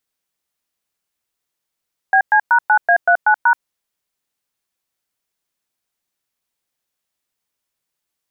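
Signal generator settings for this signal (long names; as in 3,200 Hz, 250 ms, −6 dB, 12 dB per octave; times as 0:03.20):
touch tones "BC#9A39#", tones 79 ms, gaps 110 ms, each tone −11.5 dBFS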